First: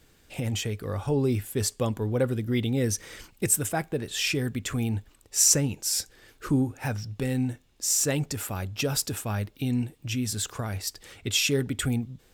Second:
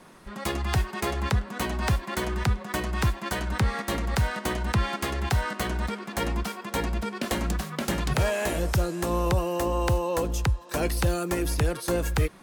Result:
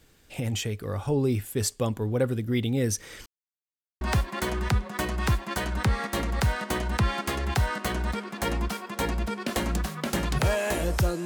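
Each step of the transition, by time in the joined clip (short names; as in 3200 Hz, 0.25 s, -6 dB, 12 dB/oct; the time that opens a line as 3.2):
first
3.26–4.01 mute
4.01 switch to second from 1.76 s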